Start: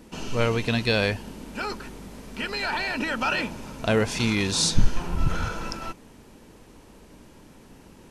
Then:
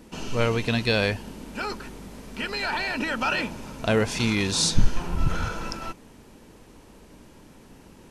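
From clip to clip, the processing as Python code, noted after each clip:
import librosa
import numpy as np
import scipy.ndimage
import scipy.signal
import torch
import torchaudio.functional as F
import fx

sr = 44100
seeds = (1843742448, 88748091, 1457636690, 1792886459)

y = x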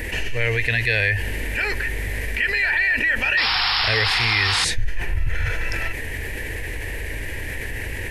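y = fx.curve_eq(x, sr, hz=(100.0, 190.0, 460.0, 810.0, 1300.0, 1800.0, 3300.0, 5700.0, 13000.0), db=(0, -22, -8, -13, -19, 11, -7, -13, -2))
y = fx.spec_paint(y, sr, seeds[0], shape='noise', start_s=3.37, length_s=1.28, low_hz=710.0, high_hz=5500.0, level_db=-28.0)
y = fx.env_flatten(y, sr, amount_pct=70)
y = y * 10.0 ** (-5.5 / 20.0)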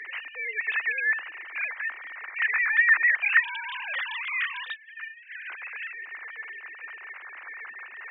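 y = fx.sine_speech(x, sr)
y = scipy.signal.sosfilt(scipy.signal.butter(2, 1100.0, 'highpass', fs=sr, output='sos'), y)
y = y * 10.0 ** (-7.0 / 20.0)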